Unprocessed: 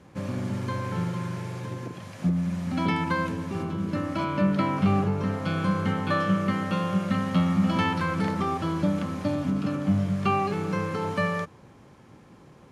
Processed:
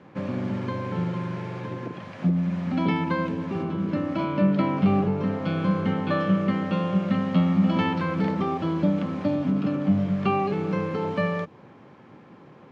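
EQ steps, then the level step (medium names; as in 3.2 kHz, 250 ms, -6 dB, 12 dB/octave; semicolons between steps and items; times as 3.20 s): dynamic bell 1.4 kHz, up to -7 dB, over -42 dBFS, Q 0.93; band-pass 150–3000 Hz; +4.0 dB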